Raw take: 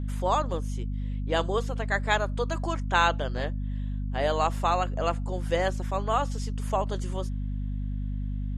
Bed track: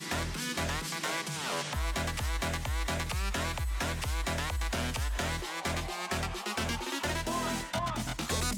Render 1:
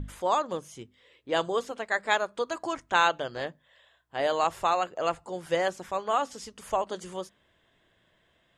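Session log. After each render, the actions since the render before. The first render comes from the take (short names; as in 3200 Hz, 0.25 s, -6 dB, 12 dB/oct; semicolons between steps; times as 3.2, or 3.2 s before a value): notches 50/100/150/200/250 Hz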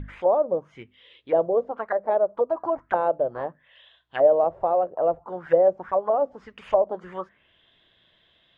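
envelope low-pass 590–3700 Hz down, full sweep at -26 dBFS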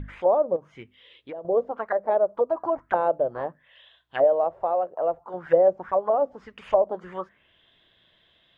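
0.56–1.45 compressor, threshold -34 dBFS; 4.24–5.34 low shelf 380 Hz -9 dB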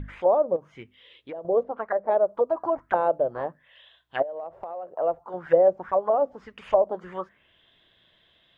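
1.63–2.09 air absorption 210 m; 4.22–4.88 compressor 12:1, threshold -31 dBFS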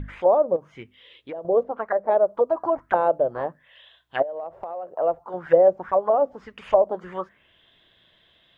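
gain +2.5 dB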